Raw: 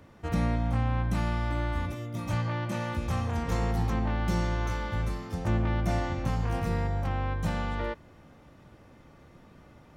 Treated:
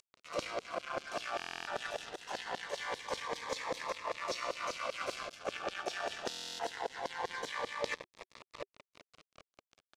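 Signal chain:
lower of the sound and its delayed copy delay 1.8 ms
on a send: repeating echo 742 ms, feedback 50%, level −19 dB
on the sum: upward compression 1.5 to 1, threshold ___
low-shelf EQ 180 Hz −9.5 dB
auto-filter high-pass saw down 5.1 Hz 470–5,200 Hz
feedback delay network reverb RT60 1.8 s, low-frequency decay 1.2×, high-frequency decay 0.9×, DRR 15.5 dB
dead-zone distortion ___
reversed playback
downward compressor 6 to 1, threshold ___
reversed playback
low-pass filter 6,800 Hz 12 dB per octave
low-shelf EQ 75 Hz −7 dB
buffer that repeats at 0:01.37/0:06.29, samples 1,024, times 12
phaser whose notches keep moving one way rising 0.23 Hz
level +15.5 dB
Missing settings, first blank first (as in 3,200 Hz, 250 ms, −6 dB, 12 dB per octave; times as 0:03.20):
−39 dBFS, −45.5 dBFS, −48 dBFS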